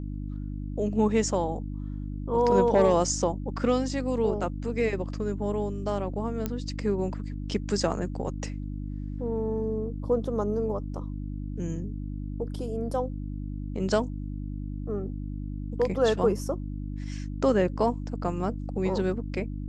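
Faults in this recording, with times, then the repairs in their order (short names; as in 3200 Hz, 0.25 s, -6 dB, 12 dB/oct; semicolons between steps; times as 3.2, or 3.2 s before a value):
hum 50 Hz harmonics 6 -34 dBFS
6.46 pop -15 dBFS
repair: de-click; de-hum 50 Hz, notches 6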